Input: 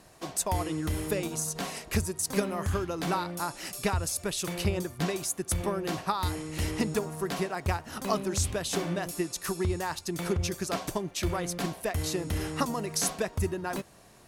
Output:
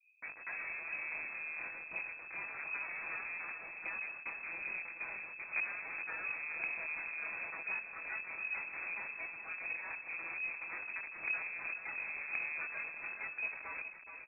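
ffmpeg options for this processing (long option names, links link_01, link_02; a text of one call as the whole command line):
ffmpeg -i in.wav -filter_complex "[0:a]bandreject=frequency=60:width_type=h:width=6,bandreject=frequency=120:width_type=h:width=6,bandreject=frequency=180:width_type=h:width=6,bandreject=frequency=240:width_type=h:width=6,bandreject=frequency=300:width_type=h:width=6,bandreject=frequency=360:width_type=h:width=6,flanger=delay=20:depth=6.1:speed=0.37,aecho=1:1:6.2:0.86,acrossover=split=760|1700[link_01][link_02][link_03];[link_01]acompressor=threshold=-34dB:ratio=4[link_04];[link_02]acompressor=threshold=-39dB:ratio=4[link_05];[link_03]acompressor=threshold=-39dB:ratio=4[link_06];[link_04][link_05][link_06]amix=inputs=3:normalize=0,asplit=2[link_07][link_08];[link_08]alimiter=level_in=6.5dB:limit=-24dB:level=0:latency=1:release=399,volume=-6.5dB,volume=-3dB[link_09];[link_07][link_09]amix=inputs=2:normalize=0,asubboost=boost=4:cutoff=91,acrossover=split=160[link_10][link_11];[link_10]aeval=exprs='(mod(13.3*val(0)+1,2)-1)/13.3':channel_layout=same[link_12];[link_11]acrusher=bits=3:dc=4:mix=0:aa=0.000001[link_13];[link_12][link_13]amix=inputs=2:normalize=0,aecho=1:1:155|421|708:0.126|0.376|0.188,lowpass=frequency=2200:width_type=q:width=0.5098,lowpass=frequency=2200:width_type=q:width=0.6013,lowpass=frequency=2200:width_type=q:width=0.9,lowpass=frequency=2200:width_type=q:width=2.563,afreqshift=-2600,volume=-8dB" out.wav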